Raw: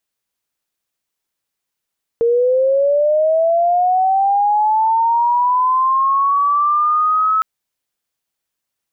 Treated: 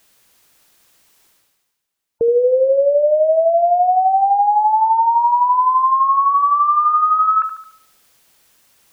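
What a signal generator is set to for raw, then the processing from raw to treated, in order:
glide linear 460 Hz → 1,300 Hz −11 dBFS → −12 dBFS 5.21 s
gate on every frequency bin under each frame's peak −30 dB strong
reversed playback
upward compression, threshold −37 dBFS
reversed playback
feedback echo with a high-pass in the loop 73 ms, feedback 47%, high-pass 320 Hz, level −9 dB

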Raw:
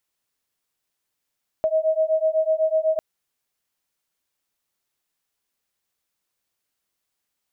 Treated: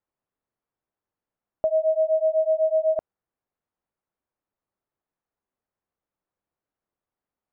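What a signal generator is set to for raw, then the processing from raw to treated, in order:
two tones that beat 630 Hz, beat 8 Hz, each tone −21 dBFS 1.35 s
low-pass filter 1,100 Hz 12 dB per octave

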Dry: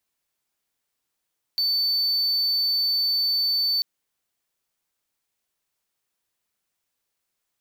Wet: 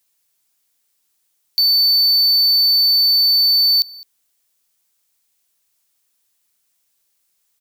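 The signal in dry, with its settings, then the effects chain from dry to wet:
tone triangle 4,520 Hz −18 dBFS 2.24 s
high-shelf EQ 3,300 Hz +12 dB
in parallel at −11 dB: hard clipping −21 dBFS
on the sum: single-tap delay 210 ms −23 dB

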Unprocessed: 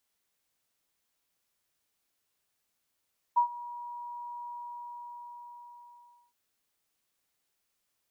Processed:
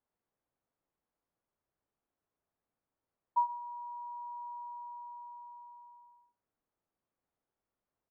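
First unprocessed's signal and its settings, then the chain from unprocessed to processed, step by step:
note with an ADSR envelope sine 960 Hz, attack 17 ms, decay 97 ms, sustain −19.5 dB, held 1.11 s, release 1,860 ms −18.5 dBFS
low-pass filter 1,000 Hz 12 dB per octave
single-tap delay 123 ms −22 dB

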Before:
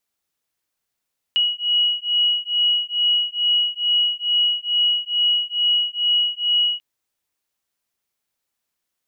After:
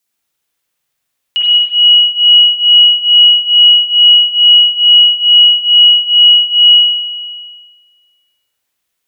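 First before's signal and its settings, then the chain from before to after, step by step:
two tones that beat 2,910 Hz, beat 2.3 Hz, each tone −20 dBFS 5.44 s
high-shelf EQ 2,700 Hz +9 dB
spring reverb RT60 1.6 s, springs 46/59 ms, chirp 55 ms, DRR −5 dB

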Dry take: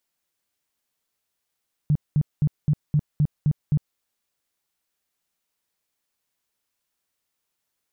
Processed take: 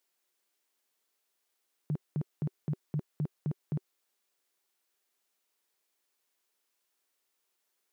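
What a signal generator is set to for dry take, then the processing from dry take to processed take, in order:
tone bursts 149 Hz, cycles 8, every 0.26 s, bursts 8, −15.5 dBFS
high-pass filter 290 Hz 12 dB per octave
parametric band 380 Hz +5.5 dB 0.31 octaves

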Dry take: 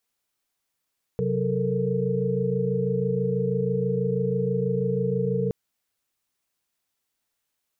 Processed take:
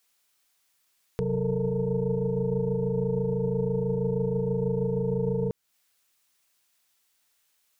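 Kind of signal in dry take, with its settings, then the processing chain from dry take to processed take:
held notes C3/F#3/A4/A#4 sine, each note −27.5 dBFS 4.32 s
stylus tracing distortion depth 0.13 ms
brickwall limiter −19.5 dBFS
one half of a high-frequency compander encoder only

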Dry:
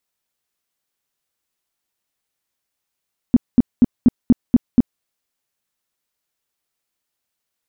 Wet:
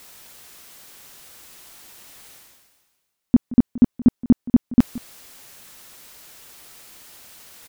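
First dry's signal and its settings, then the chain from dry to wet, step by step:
tone bursts 243 Hz, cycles 6, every 0.24 s, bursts 7, −5.5 dBFS
reversed playback
upward compression, threshold −19 dBFS
reversed playback
single-tap delay 174 ms −18.5 dB

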